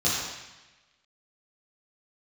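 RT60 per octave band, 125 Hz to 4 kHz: 1.2 s, 1.1 s, 1.0 s, 1.1 s, 1.3 s, 1.1 s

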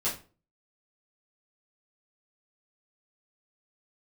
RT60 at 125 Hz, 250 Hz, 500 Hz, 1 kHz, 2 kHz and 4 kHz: 0.50 s, 0.45 s, 0.40 s, 0.35 s, 0.30 s, 0.25 s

